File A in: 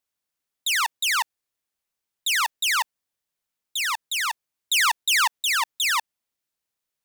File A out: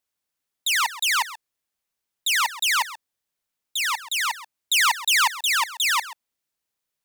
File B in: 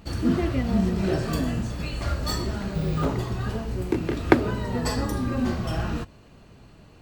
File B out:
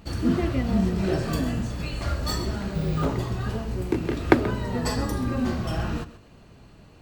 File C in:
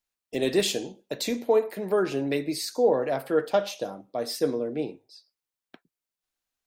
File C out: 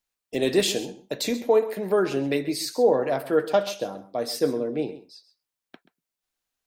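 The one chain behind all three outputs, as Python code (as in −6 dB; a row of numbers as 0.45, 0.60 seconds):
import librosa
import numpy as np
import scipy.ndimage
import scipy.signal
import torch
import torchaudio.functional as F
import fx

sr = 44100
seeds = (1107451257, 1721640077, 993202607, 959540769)

y = x + 10.0 ** (-15.5 / 20.0) * np.pad(x, (int(132 * sr / 1000.0), 0))[:len(x)]
y = y * 10.0 ** (-26 / 20.0) / np.sqrt(np.mean(np.square(y)))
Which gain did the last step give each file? +1.0, −0.5, +2.0 decibels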